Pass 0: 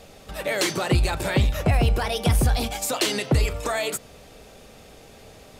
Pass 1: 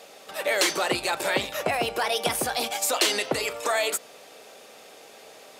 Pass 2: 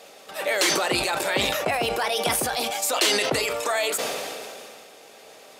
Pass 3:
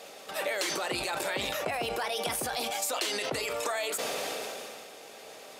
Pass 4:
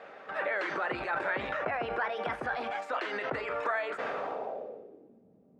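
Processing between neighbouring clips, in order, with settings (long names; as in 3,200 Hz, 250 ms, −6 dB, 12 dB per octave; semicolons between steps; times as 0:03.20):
high-pass filter 440 Hz 12 dB per octave; level +2 dB
level that may fall only so fast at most 24 dB per second
downward compressor, threshold −29 dBFS, peak gain reduction 11.5 dB
low-pass filter sweep 1,600 Hz → 200 Hz, 0:04.08–0:05.25; level −2 dB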